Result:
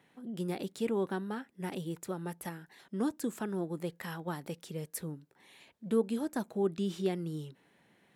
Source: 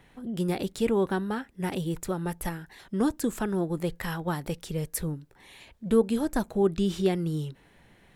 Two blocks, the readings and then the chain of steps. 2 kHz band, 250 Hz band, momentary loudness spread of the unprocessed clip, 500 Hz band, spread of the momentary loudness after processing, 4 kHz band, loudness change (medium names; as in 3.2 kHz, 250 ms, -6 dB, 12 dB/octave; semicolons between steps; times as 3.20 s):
-7.5 dB, -7.0 dB, 10 LU, -7.0 dB, 11 LU, -7.5 dB, -7.0 dB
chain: Chebyshev high-pass 190 Hz, order 2; trim -6.5 dB